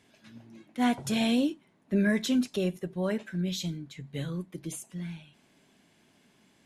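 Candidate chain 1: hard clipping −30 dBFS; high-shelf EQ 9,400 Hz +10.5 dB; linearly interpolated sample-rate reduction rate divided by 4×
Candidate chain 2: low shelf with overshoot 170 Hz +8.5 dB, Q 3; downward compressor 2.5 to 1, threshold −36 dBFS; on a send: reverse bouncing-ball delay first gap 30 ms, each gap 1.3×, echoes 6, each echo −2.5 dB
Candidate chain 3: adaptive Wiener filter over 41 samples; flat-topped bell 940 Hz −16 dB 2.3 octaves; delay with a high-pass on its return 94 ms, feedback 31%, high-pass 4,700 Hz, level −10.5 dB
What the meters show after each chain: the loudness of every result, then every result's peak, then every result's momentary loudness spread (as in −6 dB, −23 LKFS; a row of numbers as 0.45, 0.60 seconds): −35.5, −34.5, −32.0 LKFS; −22.0, −20.0, −18.5 dBFS; 14, 13, 15 LU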